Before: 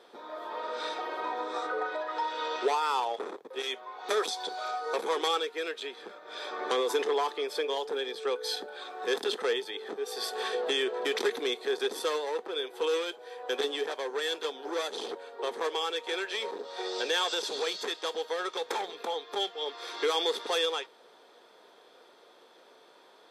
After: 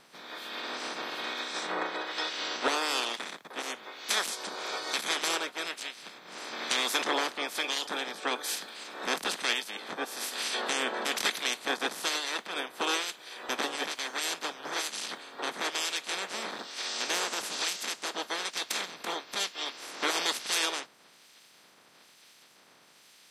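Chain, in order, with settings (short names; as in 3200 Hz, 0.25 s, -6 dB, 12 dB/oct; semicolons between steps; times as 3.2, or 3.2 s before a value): spectral limiter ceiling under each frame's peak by 27 dB; harmonic tremolo 1.1 Hz, depth 50%, crossover 1800 Hz; gain +1.5 dB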